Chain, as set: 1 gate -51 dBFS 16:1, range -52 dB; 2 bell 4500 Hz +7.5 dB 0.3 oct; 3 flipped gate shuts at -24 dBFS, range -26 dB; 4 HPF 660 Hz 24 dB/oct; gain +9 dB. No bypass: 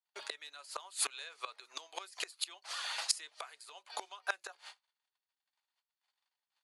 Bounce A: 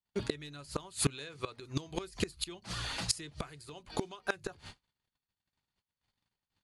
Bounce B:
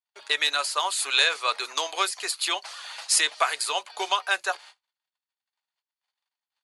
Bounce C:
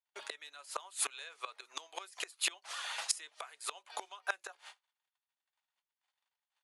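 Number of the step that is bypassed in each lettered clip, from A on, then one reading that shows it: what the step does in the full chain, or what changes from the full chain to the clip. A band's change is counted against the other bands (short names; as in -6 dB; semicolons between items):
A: 4, 250 Hz band +27.0 dB; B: 3, momentary loudness spread change -4 LU; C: 2, 4 kHz band -2.0 dB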